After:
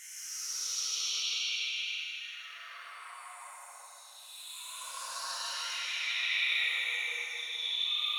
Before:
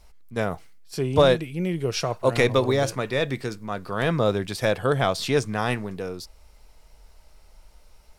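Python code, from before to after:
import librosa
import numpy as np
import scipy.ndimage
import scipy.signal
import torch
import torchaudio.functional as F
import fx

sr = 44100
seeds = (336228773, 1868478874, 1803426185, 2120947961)

y = fx.spec_delay(x, sr, highs='early', ms=182)
y = scipy.signal.sosfilt(scipy.signal.butter(4, 1500.0, 'highpass', fs=sr, output='sos'), y)
y = fx.env_flanger(y, sr, rest_ms=9.5, full_db=-30.5)
y = fx.paulstretch(y, sr, seeds[0], factor=11.0, window_s=0.1, from_s=1.78)
y = fx.echo_feedback(y, sr, ms=157, feedback_pct=59, wet_db=-9)
y = fx.rev_plate(y, sr, seeds[1], rt60_s=2.5, hf_ratio=0.9, predelay_ms=0, drr_db=-2.5)
y = y * 10.0 ** (-4.5 / 20.0)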